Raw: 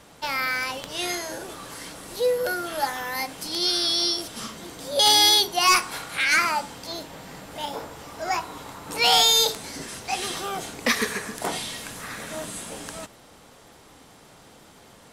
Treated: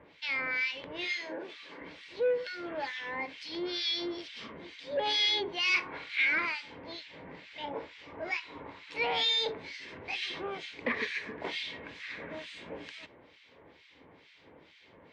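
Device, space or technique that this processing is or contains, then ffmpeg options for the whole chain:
guitar amplifier with harmonic tremolo: -filter_complex "[0:a]acrossover=split=1700[link_01][link_02];[link_01]aeval=exprs='val(0)*(1-1/2+1/2*cos(2*PI*2.2*n/s))':channel_layout=same[link_03];[link_02]aeval=exprs='val(0)*(1-1/2-1/2*cos(2*PI*2.2*n/s))':channel_layout=same[link_04];[link_03][link_04]amix=inputs=2:normalize=0,asoftclip=type=tanh:threshold=-22dB,highpass=88,equalizer=frequency=130:width_type=q:width=4:gain=-9,equalizer=frequency=210:width_type=q:width=4:gain=-9,equalizer=frequency=740:width_type=q:width=4:gain=-9,equalizer=frequency=1300:width_type=q:width=4:gain=-10,equalizer=frequency=2200:width_type=q:width=4:gain=7,lowpass=frequency=3900:width=0.5412,lowpass=frequency=3900:width=1.3066,asettb=1/sr,asplit=3[link_05][link_06][link_07];[link_05]atrim=end=1.044[link_08];[link_06]atrim=start=1.04:end=1.81,asetpts=PTS-STARTPTS,afade=type=in:duration=0.004:curve=qsin,afade=type=out:start_time=0.766:duration=0.004:curve=qsin,highpass=frequency=170:width=0.5412,highpass=frequency=170:width=1.3066[link_09];[link_07]atrim=start=1.806[link_10];[link_08][link_09]acrossfade=duration=0.004:curve1=hsin:curve2=qsin[link_11];[link_11][link_10]acrossfade=duration=0.004:curve1=qsin:curve2=hsin"

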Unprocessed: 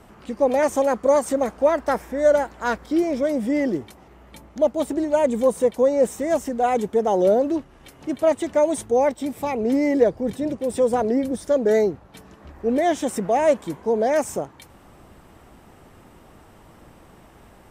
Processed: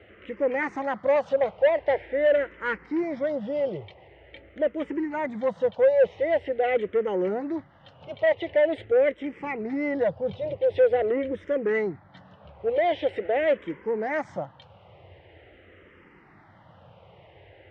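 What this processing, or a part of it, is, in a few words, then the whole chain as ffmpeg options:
barber-pole phaser into a guitar amplifier: -filter_complex "[0:a]asplit=2[link_01][link_02];[link_02]afreqshift=-0.45[link_03];[link_01][link_03]amix=inputs=2:normalize=1,asoftclip=type=tanh:threshold=-17dB,highpass=87,equalizer=frequency=95:width_type=q:width=4:gain=9,equalizer=frequency=240:width_type=q:width=4:gain=-10,equalizer=frequency=530:width_type=q:width=4:gain=6,equalizer=frequency=1100:width_type=q:width=4:gain=-4,equalizer=frequency=2000:width_type=q:width=4:gain=9,equalizer=frequency=3000:width_type=q:width=4:gain=5,lowpass=frequency=3500:width=0.5412,lowpass=frequency=3500:width=1.3066,volume=-1dB"

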